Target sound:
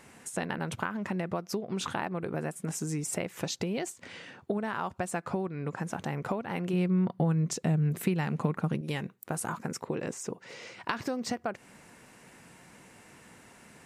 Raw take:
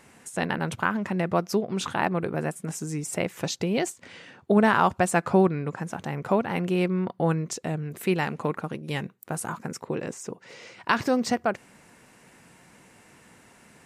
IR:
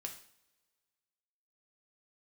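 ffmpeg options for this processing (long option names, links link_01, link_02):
-filter_complex "[0:a]acompressor=threshold=-28dB:ratio=16,asettb=1/sr,asplit=3[link_01][link_02][link_03];[link_01]atrim=end=6.734[link_04];[link_02]atrim=start=6.73:end=8.81,asetpts=PTS-STARTPTS,afade=type=in:duration=0.004:curve=qsin,afade=type=out:start_time=2.076:duration=0.004:curve=qsin,equalizer=frequency=160:width_type=o:width=1:gain=9[link_05];[link_03]atrim=start=8.806[link_06];[link_04][link_05]acrossfade=duration=0.004:curve1=hsin:curve2=qsin[link_07];[link_07][link_06]acrossfade=duration=0.004:curve1=qsin:curve2=hsin"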